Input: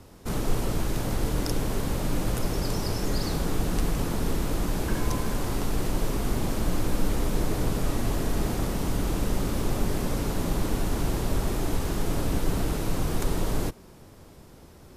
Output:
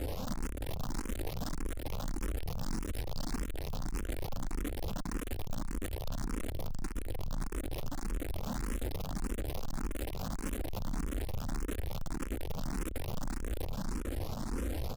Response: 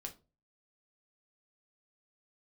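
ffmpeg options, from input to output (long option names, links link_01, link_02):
-filter_complex "[0:a]acompressor=threshold=-29dB:ratio=6,aecho=1:1:3.8:0.95,aeval=exprs='val(0)+0.00158*(sin(2*PI*50*n/s)+sin(2*PI*2*50*n/s)/2+sin(2*PI*3*50*n/s)/3+sin(2*PI*4*50*n/s)/4+sin(2*PI*5*50*n/s)/5)':channel_layout=same,acontrast=78,asoftclip=type=tanh:threshold=-39dB,lowshelf=frequency=250:gain=10.5,aecho=1:1:444|888|1332|1776:0.473|0.156|0.0515|0.017,asoftclip=type=hard:threshold=-39.5dB,asplit=2[link_01][link_02];[link_02]afreqshift=1.7[link_03];[link_01][link_03]amix=inputs=2:normalize=1,volume=8.5dB"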